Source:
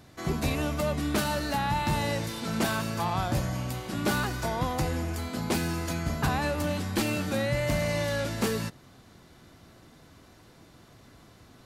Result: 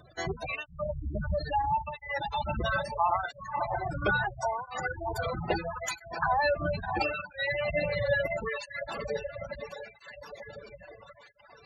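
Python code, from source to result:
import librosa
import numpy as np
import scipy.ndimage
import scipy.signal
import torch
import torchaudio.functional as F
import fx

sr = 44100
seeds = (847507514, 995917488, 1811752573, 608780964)

p1 = fx.octave_divider(x, sr, octaves=2, level_db=-3.0)
p2 = fx.riaa(p1, sr, side='playback', at=(0.65, 1.35), fade=0.02)
p3 = fx.echo_diffused(p2, sr, ms=618, feedback_pct=56, wet_db=-5.0)
p4 = fx.dereverb_blind(p3, sr, rt60_s=1.4)
p5 = fx.peak_eq(p4, sr, hz=250.0, db=-14.0, octaves=1.2)
p6 = fx.rider(p5, sr, range_db=4, speed_s=0.5)
p7 = p5 + (p6 * librosa.db_to_amplitude(1.0))
p8 = np.clip(10.0 ** (15.0 / 20.0) * p7, -1.0, 1.0) / 10.0 ** (15.0 / 20.0)
p9 = fx.spec_gate(p8, sr, threshold_db=-15, keep='strong')
p10 = fx.flanger_cancel(p9, sr, hz=0.75, depth_ms=1.2)
y = p10 * librosa.db_to_amplitude(1.5)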